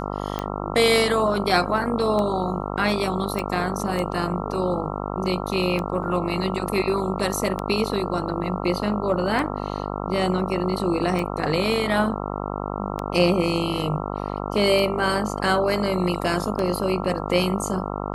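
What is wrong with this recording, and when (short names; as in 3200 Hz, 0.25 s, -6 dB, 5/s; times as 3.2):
buzz 50 Hz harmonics 27 -29 dBFS
tick 33 1/3 rpm -14 dBFS
3.39 pop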